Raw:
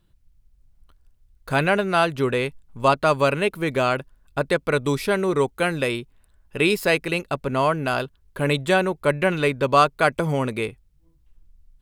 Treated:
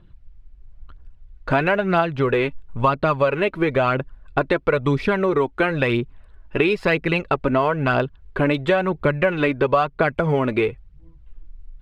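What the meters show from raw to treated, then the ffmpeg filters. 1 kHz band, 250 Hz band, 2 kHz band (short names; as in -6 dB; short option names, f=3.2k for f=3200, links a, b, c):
0.0 dB, +3.0 dB, +1.0 dB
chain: -af "lowpass=2.6k,aphaser=in_gain=1:out_gain=1:delay=3.5:decay=0.45:speed=1:type=triangular,acompressor=threshold=-25dB:ratio=5,volume=9dB"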